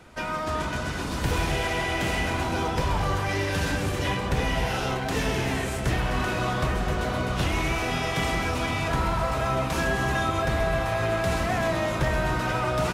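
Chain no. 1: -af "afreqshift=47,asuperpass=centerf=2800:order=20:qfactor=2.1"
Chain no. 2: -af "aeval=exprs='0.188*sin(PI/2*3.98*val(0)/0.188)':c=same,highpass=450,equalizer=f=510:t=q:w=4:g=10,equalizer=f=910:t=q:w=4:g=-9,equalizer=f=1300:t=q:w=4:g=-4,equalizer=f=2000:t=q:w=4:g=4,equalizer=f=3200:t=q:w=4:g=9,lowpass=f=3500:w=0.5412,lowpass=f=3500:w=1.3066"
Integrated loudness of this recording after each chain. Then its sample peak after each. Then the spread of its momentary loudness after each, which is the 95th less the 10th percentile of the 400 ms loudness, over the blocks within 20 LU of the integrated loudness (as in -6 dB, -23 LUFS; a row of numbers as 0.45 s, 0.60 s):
-36.5 LUFS, -16.5 LUFS; -22.0 dBFS, -6.0 dBFS; 8 LU, 3 LU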